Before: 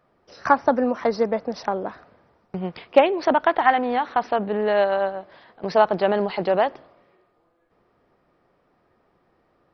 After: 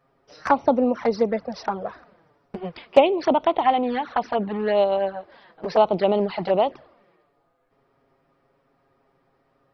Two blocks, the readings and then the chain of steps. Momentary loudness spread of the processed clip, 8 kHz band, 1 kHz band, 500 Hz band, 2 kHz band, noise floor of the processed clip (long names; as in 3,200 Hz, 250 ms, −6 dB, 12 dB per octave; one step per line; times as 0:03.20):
16 LU, can't be measured, −1.5 dB, 0.0 dB, −6.0 dB, −67 dBFS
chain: flanger swept by the level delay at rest 7.5 ms, full sweep at −16.5 dBFS
level +2 dB